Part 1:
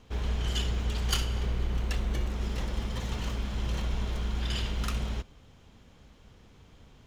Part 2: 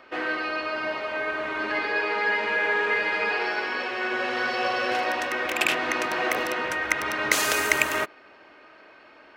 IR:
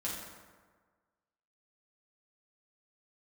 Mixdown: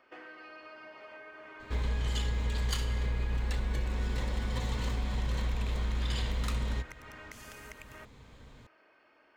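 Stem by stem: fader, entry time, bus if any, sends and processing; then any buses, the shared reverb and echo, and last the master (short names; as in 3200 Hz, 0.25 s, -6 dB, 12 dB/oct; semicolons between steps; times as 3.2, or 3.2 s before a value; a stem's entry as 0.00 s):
+0.5 dB, 1.60 s, no send, ripple EQ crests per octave 1, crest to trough 6 dB; compressor, threshold -28 dBFS, peak gain reduction 7 dB
-13.5 dB, 0.00 s, no send, notch 3900 Hz, Q 6.4; compressor 16:1, threshold -32 dBFS, peak gain reduction 18 dB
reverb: off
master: dry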